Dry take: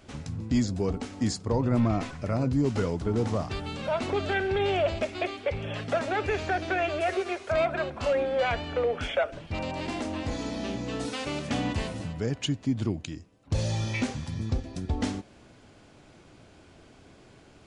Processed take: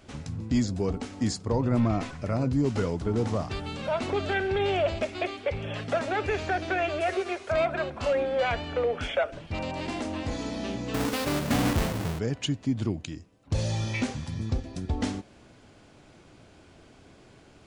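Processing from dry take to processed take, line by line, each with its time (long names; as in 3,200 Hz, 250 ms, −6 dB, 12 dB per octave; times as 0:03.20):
0:10.94–0:12.19: each half-wave held at its own peak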